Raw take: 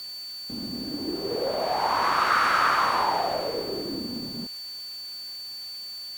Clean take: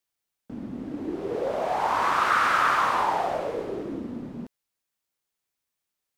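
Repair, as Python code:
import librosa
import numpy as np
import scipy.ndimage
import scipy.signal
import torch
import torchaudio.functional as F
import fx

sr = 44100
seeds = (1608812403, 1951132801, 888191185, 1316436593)

y = fx.notch(x, sr, hz=4500.0, q=30.0)
y = fx.noise_reduce(y, sr, print_start_s=4.51, print_end_s=5.01, reduce_db=30.0)
y = fx.gain(y, sr, db=fx.steps((0.0, 0.0), (4.58, -3.0)))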